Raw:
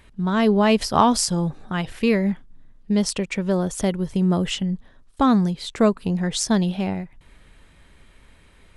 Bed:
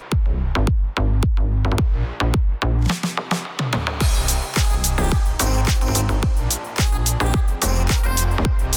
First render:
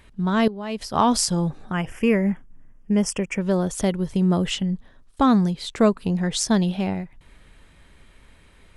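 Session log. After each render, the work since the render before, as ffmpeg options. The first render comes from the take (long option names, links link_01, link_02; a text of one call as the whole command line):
ffmpeg -i in.wav -filter_complex "[0:a]asettb=1/sr,asplit=3[link_01][link_02][link_03];[link_01]atrim=end=1.724[link_04];[link_02]atrim=start=1.72:end=3.41,asetpts=PTS-STARTPTS,afade=type=in:duration=0.004:curve=qsin,afade=type=out:start_time=1.686:duration=0.004:curve=qsin,asuperstop=centerf=4000:order=4:qfactor=1.7[link_05];[link_03]atrim=start=3.406[link_06];[link_04][link_05]acrossfade=duration=0.004:curve1=hsin:curve2=qsin[link_07];[link_07][link_06]acrossfade=duration=0.004:curve1=qsin:curve2=hsin,asplit=2[link_08][link_09];[link_08]atrim=end=0.48,asetpts=PTS-STARTPTS,afade=type=out:start_time=0.476:duration=0.004:curve=hsin:silence=0.141254[link_10];[link_09]atrim=start=0.48,asetpts=PTS-STARTPTS,afade=type=in:duration=0.65:curve=qua:silence=0.141254[link_11];[link_10][link_11]concat=n=2:v=0:a=1" out.wav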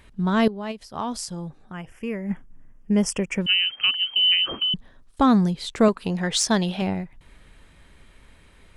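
ffmpeg -i in.wav -filter_complex "[0:a]asettb=1/sr,asplit=3[link_01][link_02][link_03];[link_01]atrim=end=3.464[link_04];[link_02]atrim=start=3.46:end=4.74,asetpts=PTS-STARTPTS,afade=type=in:duration=0.004:curve=qsin,afade=type=out:start_time=1.276:duration=0.004:curve=qsin,lowpass=frequency=2700:width_type=q:width=0.5098,lowpass=frequency=2700:width_type=q:width=0.6013,lowpass=frequency=2700:width_type=q:width=0.9,lowpass=frequency=2700:width_type=q:width=2.563,afreqshift=-3200[link_05];[link_03]atrim=start=4.736[link_06];[link_04][link_05]acrossfade=duration=0.004:curve1=hsin:curve2=qsin[link_07];[link_07][link_06]acrossfade=duration=0.004:curve1=qsin:curve2=hsin,asettb=1/sr,asplit=3[link_08][link_09][link_10];[link_08]atrim=end=5.884[link_11];[link_09]atrim=start=5.88:end=6.82,asetpts=PTS-STARTPTS,afade=type=in:duration=0.004:curve=qsin,afade=type=out:start_time=0.936:duration=0.004:curve=qsin,asplit=2[link_12][link_13];[link_13]highpass=frequency=720:poles=1,volume=9dB,asoftclip=type=tanh:threshold=-6.5dB[link_14];[link_12][link_14]amix=inputs=2:normalize=0,lowpass=frequency=6900:poles=1,volume=-6dB[link_15];[link_10]atrim=start=6.816[link_16];[link_11][link_15]acrossfade=duration=0.004:curve1=hsin:curve2=qsin[link_17];[link_17][link_16]acrossfade=duration=0.004:curve1=qsin:curve2=hsin,asplit=3[link_18][link_19][link_20];[link_18]atrim=end=0.85,asetpts=PTS-STARTPTS,afade=type=out:start_time=0.71:duration=0.14:curve=exp:silence=0.298538[link_21];[link_19]atrim=start=0.85:end=2.17,asetpts=PTS-STARTPTS,volume=-10.5dB[link_22];[link_20]atrim=start=2.17,asetpts=PTS-STARTPTS,afade=type=in:duration=0.14:curve=exp:silence=0.298538[link_23];[link_21][link_22][link_23]concat=n=3:v=0:a=1" out.wav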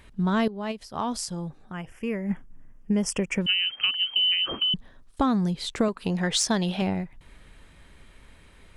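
ffmpeg -i in.wav -af "acompressor=threshold=-20dB:ratio=6" out.wav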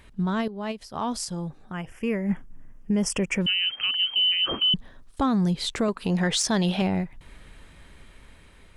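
ffmpeg -i in.wav -af "alimiter=limit=-19.5dB:level=0:latency=1:release=13,dynaudnorm=framelen=660:gausssize=5:maxgain=3.5dB" out.wav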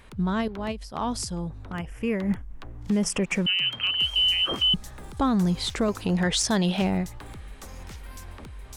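ffmpeg -i in.wav -i bed.wav -filter_complex "[1:a]volume=-23.5dB[link_01];[0:a][link_01]amix=inputs=2:normalize=0" out.wav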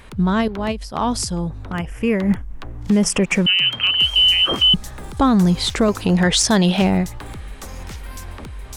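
ffmpeg -i in.wav -af "volume=8dB" out.wav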